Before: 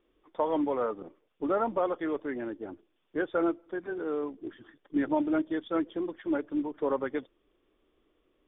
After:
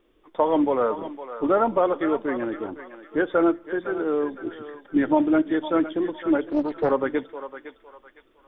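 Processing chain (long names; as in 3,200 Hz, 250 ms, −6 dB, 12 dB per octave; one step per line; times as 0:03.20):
feedback echo with a high-pass in the loop 509 ms, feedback 39%, high-pass 780 Hz, level −9 dB
on a send at −21 dB: convolution reverb RT60 0.45 s, pre-delay 3 ms
0:06.49–0:06.91: on the sum: highs frequency-modulated by the lows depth 0.53 ms
level +7.5 dB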